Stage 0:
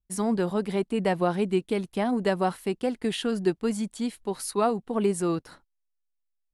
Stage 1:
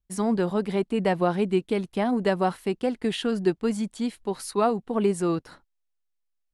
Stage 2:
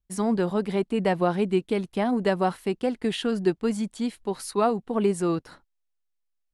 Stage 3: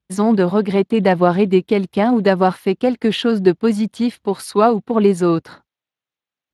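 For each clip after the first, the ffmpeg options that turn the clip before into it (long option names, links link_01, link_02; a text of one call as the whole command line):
ffmpeg -i in.wav -af "highshelf=frequency=8900:gain=-8.5,volume=1.5dB" out.wav
ffmpeg -i in.wav -af anull out.wav
ffmpeg -i in.wav -af "volume=9dB" -ar 32000 -c:a libspeex -b:a 28k out.spx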